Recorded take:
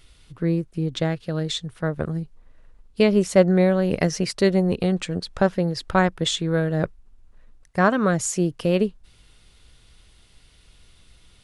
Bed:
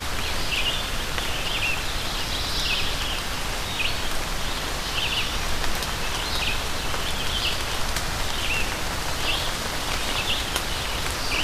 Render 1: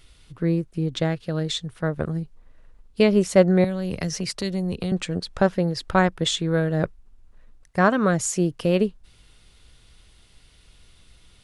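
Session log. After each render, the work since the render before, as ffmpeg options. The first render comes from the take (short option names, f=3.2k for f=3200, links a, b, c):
-filter_complex "[0:a]asettb=1/sr,asplit=3[a][b][c];[a]atrim=end=3.644[d];[b]atrim=start=3.64:end=4.92,asetpts=PTS-STARTPTS,afade=t=in:d=0.004:c=qsin,afade=t=out:st=1.276:d=0.004:c=qsin,acrossover=split=160|3000[e][f][g];[f]acompressor=threshold=-28dB:ratio=6:attack=3.2:release=140:knee=2.83:detection=peak[h];[e][h][g]amix=inputs=3:normalize=0[i];[c]atrim=start=4.916[j];[d][i]acrossfade=d=0.004:c1=hsin:c2=qsin[k];[k][j]acrossfade=d=0.004:c1=qsin:c2=hsin"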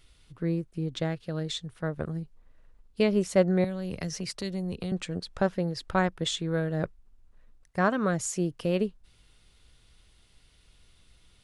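-af "volume=-6.5dB"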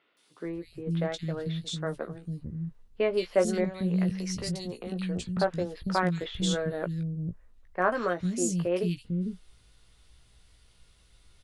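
-filter_complex "[0:a]asplit=2[a][b];[b]adelay=17,volume=-7dB[c];[a][c]amix=inputs=2:normalize=0,acrossover=split=260|2800[d][e][f];[f]adelay=170[g];[d]adelay=450[h];[h][e][g]amix=inputs=3:normalize=0"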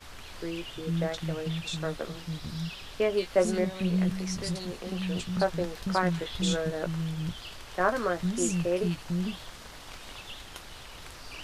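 -filter_complex "[1:a]volume=-18.5dB[a];[0:a][a]amix=inputs=2:normalize=0"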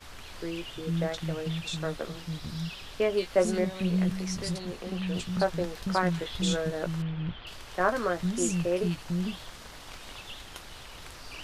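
-filter_complex "[0:a]asettb=1/sr,asplit=3[a][b][c];[a]atrim=end=4.584[d];[b]atrim=start=4.58:end=5.14,asetpts=PTS-STARTPTS,afade=t=in:d=0.004:c=qsin,afade=t=out:st=0.556:d=0.004:c=qsin,acrossover=split=3700[e][f];[f]acompressor=threshold=-51dB:ratio=4:attack=1:release=60[g];[e][g]amix=inputs=2:normalize=0[h];[c]atrim=start=5.136[i];[d][h]acrossfade=d=0.004:c1=hsin:c2=qsin[j];[j][i]acrossfade=d=0.004:c1=qsin:c2=hsin,asettb=1/sr,asplit=3[k][l][m];[k]atrim=end=7.024[n];[l]atrim=start=7.02:end=7.47,asetpts=PTS-STARTPTS,afade=t=in:d=0.004:c=qsin,afade=t=out:st=0.446:d=0.004:c=qsin,lowpass=f=3.2k:w=0.5412,lowpass=f=3.2k:w=1.3066[o];[m]atrim=start=7.466[p];[n][o]acrossfade=d=0.004:c1=hsin:c2=qsin[q];[q][p]acrossfade=d=0.004:c1=qsin:c2=hsin"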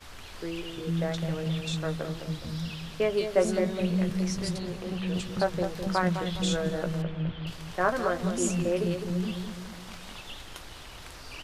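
-filter_complex "[0:a]asplit=2[a][b];[b]adelay=207,lowpass=f=960:p=1,volume=-6.5dB,asplit=2[c][d];[d]adelay=207,lowpass=f=960:p=1,volume=0.53,asplit=2[e][f];[f]adelay=207,lowpass=f=960:p=1,volume=0.53,asplit=2[g][h];[h]adelay=207,lowpass=f=960:p=1,volume=0.53,asplit=2[i][j];[j]adelay=207,lowpass=f=960:p=1,volume=0.53,asplit=2[k][l];[l]adelay=207,lowpass=f=960:p=1,volume=0.53,asplit=2[m][n];[n]adelay=207,lowpass=f=960:p=1,volume=0.53[o];[a][c][e][g][i][k][m][o]amix=inputs=8:normalize=0"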